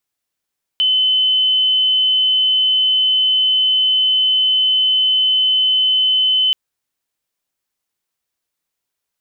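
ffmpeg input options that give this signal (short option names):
-f lavfi -i "sine=f=3040:d=5.73:r=44100,volume=6.56dB"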